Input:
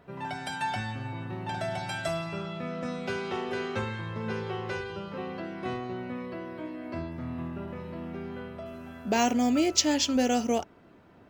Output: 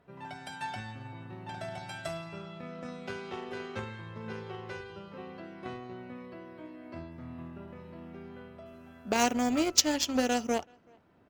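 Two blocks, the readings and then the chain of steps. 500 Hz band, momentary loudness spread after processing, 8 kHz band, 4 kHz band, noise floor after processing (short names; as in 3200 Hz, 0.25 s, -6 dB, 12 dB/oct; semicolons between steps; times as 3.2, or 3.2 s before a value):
-4.0 dB, 19 LU, 0.0 dB, -1.5 dB, -59 dBFS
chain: added harmonics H 7 -20 dB, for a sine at -7 dBFS; speakerphone echo 0.38 s, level -29 dB; gain +2 dB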